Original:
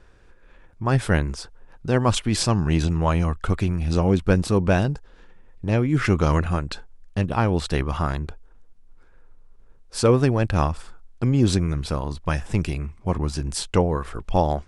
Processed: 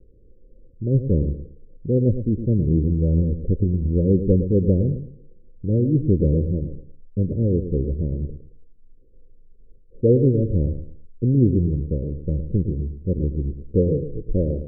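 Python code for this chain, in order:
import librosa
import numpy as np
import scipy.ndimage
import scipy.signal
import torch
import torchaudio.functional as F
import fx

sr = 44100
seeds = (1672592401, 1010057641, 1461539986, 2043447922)

p1 = fx.comb(x, sr, ms=6.6, depth=0.64, at=(13.9, 14.31))
p2 = scipy.signal.sosfilt(scipy.signal.butter(16, 540.0, 'lowpass', fs=sr, output='sos'), p1)
p3 = p2 + fx.echo_feedback(p2, sr, ms=111, feedback_pct=27, wet_db=-10, dry=0)
y = p3 * 10.0 ** (1.5 / 20.0)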